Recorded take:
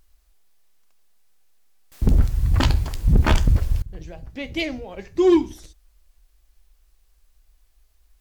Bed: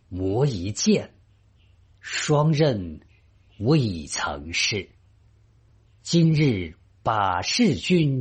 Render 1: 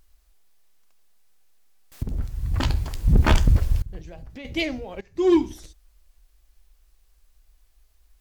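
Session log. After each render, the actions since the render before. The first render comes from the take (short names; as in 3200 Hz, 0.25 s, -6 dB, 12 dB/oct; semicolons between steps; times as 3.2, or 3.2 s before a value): 2.03–3.29 fade in, from -15.5 dB; 3.99–4.45 compressor, threshold -35 dBFS; 5.01–5.42 fade in, from -17 dB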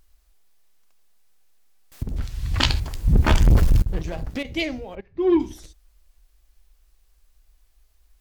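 2.16–2.8 bell 3600 Hz +12.5 dB 2.6 oct; 3.4–4.43 sample leveller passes 3; 4.95–5.4 air absorption 350 m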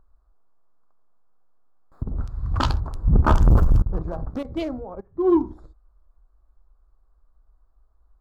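Wiener smoothing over 15 samples; resonant high shelf 1600 Hz -8.5 dB, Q 3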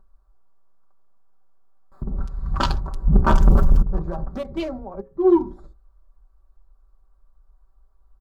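notches 60/120/180/240/300/360/420/480/540 Hz; comb 5.2 ms, depth 73%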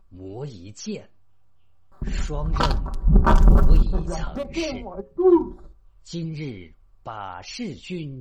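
add bed -12 dB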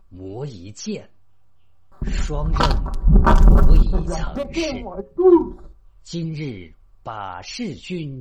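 gain +3.5 dB; limiter -3 dBFS, peak gain reduction 2.5 dB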